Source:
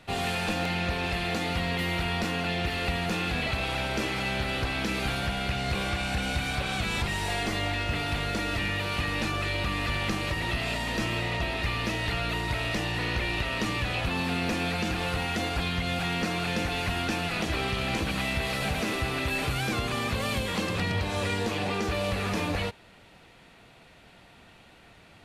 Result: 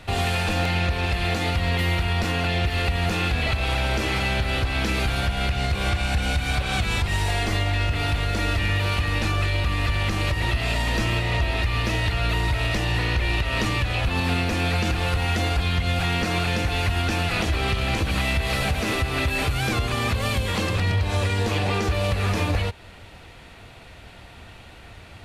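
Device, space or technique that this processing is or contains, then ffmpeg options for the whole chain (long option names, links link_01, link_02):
car stereo with a boomy subwoofer: -af "lowshelf=frequency=120:width_type=q:width=1.5:gain=7,alimiter=limit=-22dB:level=0:latency=1:release=222,volume=8dB"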